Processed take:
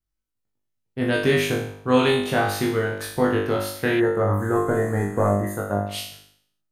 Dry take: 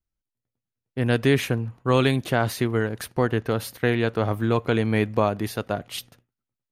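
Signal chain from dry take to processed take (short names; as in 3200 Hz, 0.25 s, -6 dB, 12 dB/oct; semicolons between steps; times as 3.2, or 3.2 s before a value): 4.39–5.36 delta modulation 64 kbps, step -37 dBFS; flutter echo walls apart 3.4 m, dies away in 0.63 s; 4–5.87 spectral gain 2100–6200 Hz -21 dB; gain -2 dB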